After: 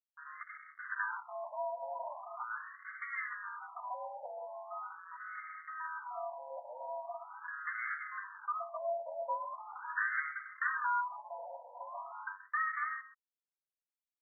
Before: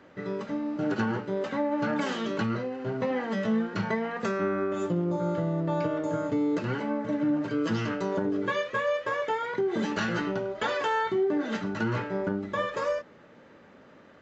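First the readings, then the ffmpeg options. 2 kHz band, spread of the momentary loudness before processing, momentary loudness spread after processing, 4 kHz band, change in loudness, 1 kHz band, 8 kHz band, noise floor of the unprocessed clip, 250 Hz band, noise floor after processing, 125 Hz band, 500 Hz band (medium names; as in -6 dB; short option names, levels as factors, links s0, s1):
-3.5 dB, 4 LU, 12 LU, under -40 dB, -10.5 dB, -5.5 dB, no reading, -54 dBFS, under -40 dB, under -85 dBFS, under -40 dB, -15.5 dB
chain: -filter_complex "[0:a]tiltshelf=f=1200:g=-9,asplit=2[s0][s1];[s1]acrusher=bits=2:mode=log:mix=0:aa=0.000001,volume=0.422[s2];[s0][s2]amix=inputs=2:normalize=0,highpass=f=440:t=q:w=0.5412,highpass=f=440:t=q:w=1.307,lowpass=f=2400:t=q:w=0.5176,lowpass=f=2400:t=q:w=0.7071,lowpass=f=2400:t=q:w=1.932,afreqshift=93,acrusher=bits=5:mix=0:aa=0.5,aecho=1:1:128:0.188,afftfilt=real='re*between(b*sr/1024,690*pow(1600/690,0.5+0.5*sin(2*PI*0.41*pts/sr))/1.41,690*pow(1600/690,0.5+0.5*sin(2*PI*0.41*pts/sr))*1.41)':imag='im*between(b*sr/1024,690*pow(1600/690,0.5+0.5*sin(2*PI*0.41*pts/sr))/1.41,690*pow(1600/690,0.5+0.5*sin(2*PI*0.41*pts/sr))*1.41)':win_size=1024:overlap=0.75,volume=0.562"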